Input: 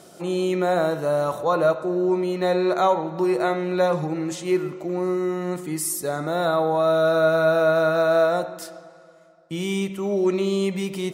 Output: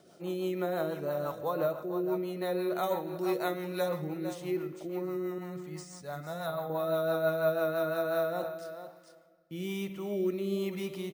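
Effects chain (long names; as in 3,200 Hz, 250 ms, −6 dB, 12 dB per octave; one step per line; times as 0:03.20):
0:05.38–0:06.70: drawn EQ curve 180 Hz 0 dB, 350 Hz −14 dB, 650 Hz −1 dB
bad sample-rate conversion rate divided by 3×, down filtered, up hold
0:02.83–0:03.89: parametric band 7,000 Hz +8.5 dB 2 octaves
single-tap delay 449 ms −11.5 dB
rotating-speaker cabinet horn 6 Hz, later 1.1 Hz, at 0:07.84
level −8.5 dB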